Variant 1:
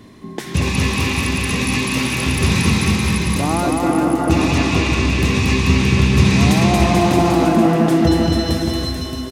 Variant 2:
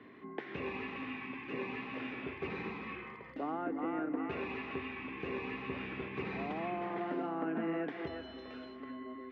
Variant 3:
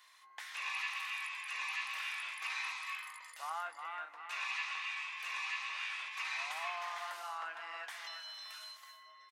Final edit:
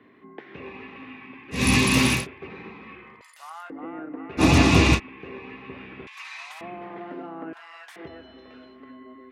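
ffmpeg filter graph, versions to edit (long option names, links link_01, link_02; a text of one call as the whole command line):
ffmpeg -i take0.wav -i take1.wav -i take2.wav -filter_complex "[0:a]asplit=2[link_01][link_02];[2:a]asplit=3[link_03][link_04][link_05];[1:a]asplit=6[link_06][link_07][link_08][link_09][link_10][link_11];[link_06]atrim=end=1.67[link_12];[link_01]atrim=start=1.51:end=2.27[link_13];[link_07]atrim=start=2.11:end=3.212[link_14];[link_03]atrim=start=3.208:end=3.702[link_15];[link_08]atrim=start=3.698:end=4.43[link_16];[link_02]atrim=start=4.37:end=5[link_17];[link_09]atrim=start=4.94:end=6.072[link_18];[link_04]atrim=start=6.068:end=6.612[link_19];[link_10]atrim=start=6.608:end=7.532[link_20];[link_05]atrim=start=7.528:end=7.962[link_21];[link_11]atrim=start=7.958[link_22];[link_12][link_13]acrossfade=duration=0.16:curve1=tri:curve2=tri[link_23];[link_23][link_14]acrossfade=duration=0.16:curve1=tri:curve2=tri[link_24];[link_24][link_15]acrossfade=duration=0.004:curve1=hsin:curve2=hsin[link_25];[link_25][link_16]acrossfade=duration=0.004:curve1=hsin:curve2=hsin[link_26];[link_26][link_17]acrossfade=duration=0.06:curve1=tri:curve2=tri[link_27];[link_27][link_18]acrossfade=duration=0.06:curve1=tri:curve2=tri[link_28];[link_28][link_19]acrossfade=duration=0.004:curve1=hsin:curve2=hsin[link_29];[link_29][link_20]acrossfade=duration=0.004:curve1=hsin:curve2=hsin[link_30];[link_30][link_21]acrossfade=duration=0.004:curve1=hsin:curve2=hsin[link_31];[link_31][link_22]acrossfade=duration=0.004:curve1=hsin:curve2=hsin" out.wav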